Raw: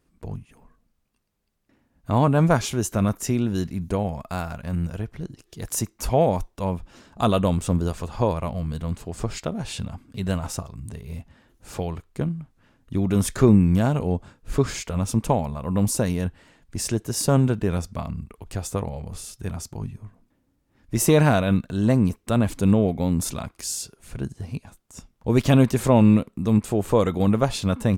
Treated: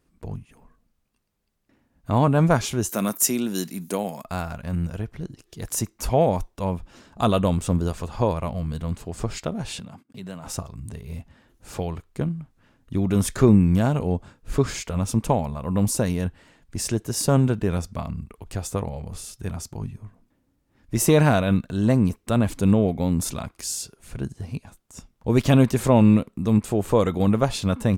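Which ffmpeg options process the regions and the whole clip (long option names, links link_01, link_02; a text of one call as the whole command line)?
ffmpeg -i in.wav -filter_complex "[0:a]asettb=1/sr,asplit=3[link_01][link_02][link_03];[link_01]atrim=end=2.894[link_04];[link_02]atrim=start=2.89:end=4.24,asetpts=PTS-STARTPTS,afade=type=in:duration=0.004:curve=qsin,afade=type=out:start_time=1.346:duration=0.004:curve=qsin,highpass=frequency=180:width=0.5412,highpass=frequency=180:width=1.3066,aemphasis=mode=production:type=75fm[link_05];[link_03]atrim=start=4.236[link_06];[link_04][link_05]acrossfade=duration=0.004:curve1=hsin:curve2=qsin[link_07];[link_07][link_06]acrossfade=duration=0.004:curve1=qsin:curve2=hsin,asettb=1/sr,asplit=3[link_08][link_09][link_10];[link_08]atrim=end=9.794[link_11];[link_09]atrim=start=9.79:end=10.47,asetpts=PTS-STARTPTS,afade=type=in:duration=0.004:curve=qsin,afade=type=out:start_time=0.676:duration=0.004:curve=qsin,highpass=frequency=130:width=0.5412,highpass=frequency=130:width=1.3066,agate=range=-22dB:threshold=-51dB:ratio=16:release=100:detection=peak,acompressor=threshold=-39dB:ratio=2:attack=3.2:release=140:knee=1:detection=peak[link_12];[link_10]atrim=start=10.466[link_13];[link_11][link_12]acrossfade=duration=0.004:curve1=hsin:curve2=qsin[link_14];[link_14][link_13]acrossfade=duration=0.004:curve1=qsin:curve2=hsin" out.wav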